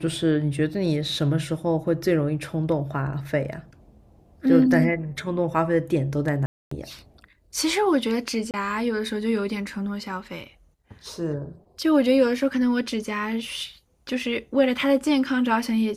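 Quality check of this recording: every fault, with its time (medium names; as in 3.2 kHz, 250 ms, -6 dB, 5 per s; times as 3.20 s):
6.46–6.71 s: dropout 254 ms
8.51–8.54 s: dropout 28 ms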